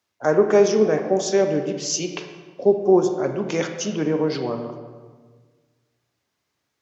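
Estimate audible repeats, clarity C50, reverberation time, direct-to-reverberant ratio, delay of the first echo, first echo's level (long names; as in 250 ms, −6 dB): no echo audible, 7.0 dB, 1.5 s, 6.0 dB, no echo audible, no echo audible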